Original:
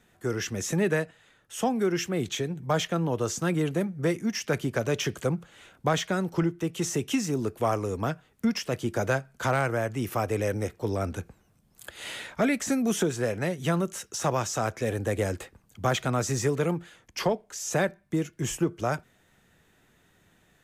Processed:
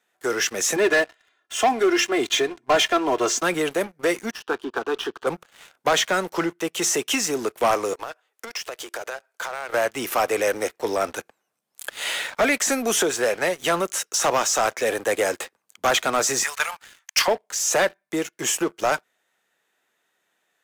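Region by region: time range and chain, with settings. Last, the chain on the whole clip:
0:00.76–0:03.43: high-frequency loss of the air 61 metres + comb filter 2.9 ms, depth 100%
0:04.31–0:05.27: low-pass filter 3,600 Hz 24 dB per octave + phaser with its sweep stopped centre 580 Hz, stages 6
0:07.93–0:09.74: high-pass filter 360 Hz 24 dB per octave + downward compressor 10 to 1, threshold −37 dBFS
0:16.43–0:17.28: Bessel high-pass filter 1,300 Hz, order 6 + notch filter 3,300 Hz, Q 30 + transient designer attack +11 dB, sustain +5 dB
whole clip: high-pass filter 530 Hz 12 dB per octave; leveller curve on the samples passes 3

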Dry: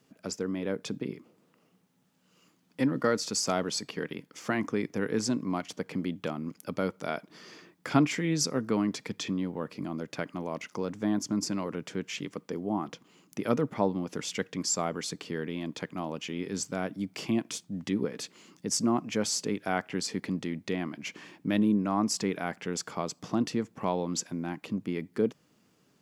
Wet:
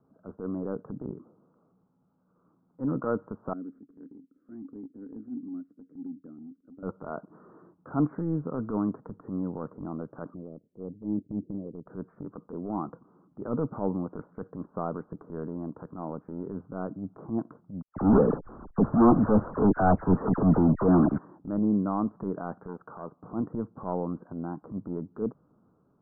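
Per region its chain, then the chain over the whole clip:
0:03.53–0:06.83: variable-slope delta modulation 64 kbit/s + formant filter i
0:10.34–0:11.86: Butterworth low-pass 520 Hz + expander for the loud parts, over −49 dBFS
0:17.82–0:21.18: leveller curve on the samples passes 5 + slack as between gear wheels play −45 dBFS + all-pass dispersion lows, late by 141 ms, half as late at 2,600 Hz
0:22.68–0:23.24: low-shelf EQ 330 Hz −6.5 dB + saturating transformer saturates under 860 Hz
whole clip: transient designer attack −10 dB, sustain +2 dB; Butterworth low-pass 1,400 Hz 72 dB per octave; low-shelf EQ 81 Hz +9 dB

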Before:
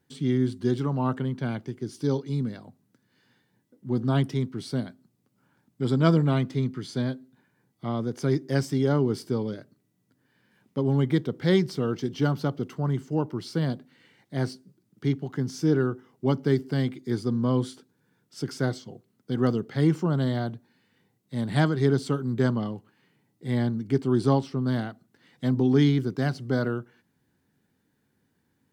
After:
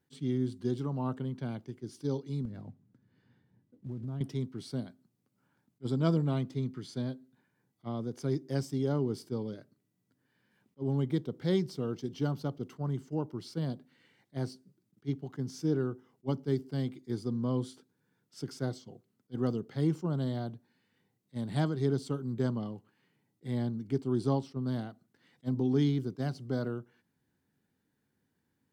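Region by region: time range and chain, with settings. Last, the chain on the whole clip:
0:02.45–0:04.21: one scale factor per block 5 bits + RIAA equalisation playback + downward compressor 4 to 1, threshold −31 dBFS
whole clip: dynamic equaliser 1,800 Hz, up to −7 dB, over −48 dBFS, Q 1.2; level that may rise only so fast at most 600 dB per second; level −7 dB

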